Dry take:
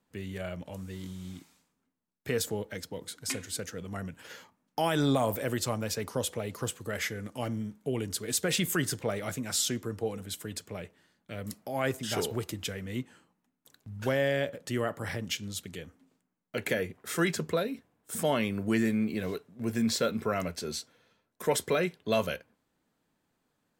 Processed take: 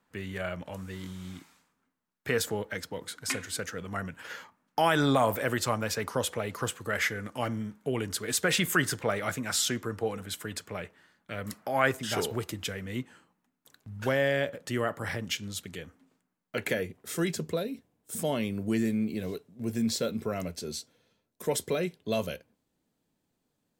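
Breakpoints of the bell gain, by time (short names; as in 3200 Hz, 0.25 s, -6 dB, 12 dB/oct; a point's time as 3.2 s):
bell 1400 Hz 1.8 oct
11.38 s +8 dB
11.66 s +14 dB
12.11 s +3.5 dB
16.6 s +3.5 dB
17.01 s -7.5 dB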